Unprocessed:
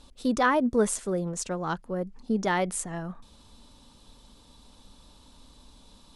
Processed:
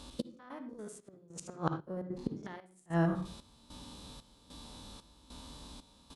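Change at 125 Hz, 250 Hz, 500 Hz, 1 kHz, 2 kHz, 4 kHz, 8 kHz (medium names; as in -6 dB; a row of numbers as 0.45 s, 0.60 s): -1.5 dB, -8.5 dB, -12.5 dB, -13.0 dB, -15.0 dB, -8.0 dB, -17.5 dB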